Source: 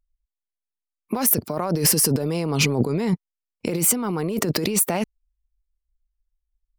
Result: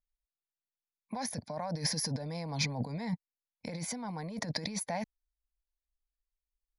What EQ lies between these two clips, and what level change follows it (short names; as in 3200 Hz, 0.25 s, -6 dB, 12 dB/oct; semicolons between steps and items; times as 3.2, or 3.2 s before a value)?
brick-wall FIR low-pass 11000 Hz; low shelf 87 Hz -8 dB; fixed phaser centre 1900 Hz, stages 8; -8.0 dB